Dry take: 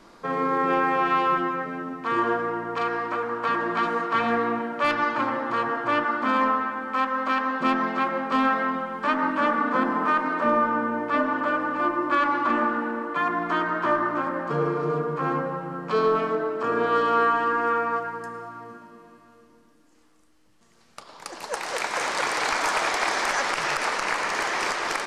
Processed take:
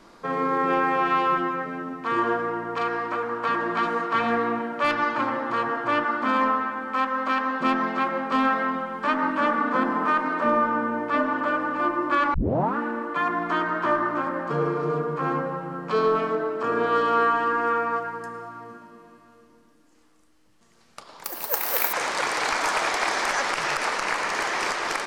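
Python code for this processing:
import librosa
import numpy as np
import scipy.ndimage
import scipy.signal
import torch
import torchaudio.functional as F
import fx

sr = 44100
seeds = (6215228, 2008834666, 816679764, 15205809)

y = fx.resample_bad(x, sr, factor=3, down='none', up='zero_stuff', at=(21.24, 21.93))
y = fx.edit(y, sr, fx.tape_start(start_s=12.34, length_s=0.43), tone=tone)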